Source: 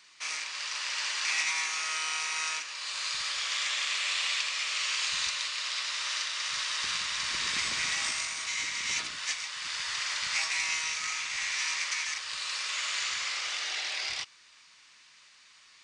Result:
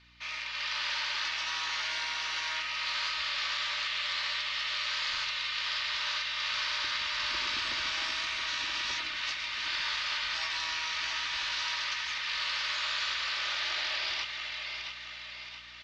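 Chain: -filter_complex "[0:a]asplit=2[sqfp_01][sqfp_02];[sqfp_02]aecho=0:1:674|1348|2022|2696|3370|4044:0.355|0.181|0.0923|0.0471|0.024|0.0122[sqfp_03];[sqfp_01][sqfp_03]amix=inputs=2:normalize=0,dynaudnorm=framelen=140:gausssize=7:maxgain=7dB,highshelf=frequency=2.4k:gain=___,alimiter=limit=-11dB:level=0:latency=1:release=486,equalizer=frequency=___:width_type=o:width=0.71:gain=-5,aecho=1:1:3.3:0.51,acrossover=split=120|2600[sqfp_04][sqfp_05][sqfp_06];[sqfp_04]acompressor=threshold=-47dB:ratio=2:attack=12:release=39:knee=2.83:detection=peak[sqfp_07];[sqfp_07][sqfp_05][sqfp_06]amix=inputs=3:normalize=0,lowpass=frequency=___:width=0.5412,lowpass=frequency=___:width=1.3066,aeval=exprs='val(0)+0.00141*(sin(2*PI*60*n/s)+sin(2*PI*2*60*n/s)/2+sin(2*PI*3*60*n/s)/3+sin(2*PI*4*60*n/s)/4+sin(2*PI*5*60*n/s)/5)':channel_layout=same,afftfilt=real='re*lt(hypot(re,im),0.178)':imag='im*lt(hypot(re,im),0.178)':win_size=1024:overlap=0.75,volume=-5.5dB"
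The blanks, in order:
5, 200, 4k, 4k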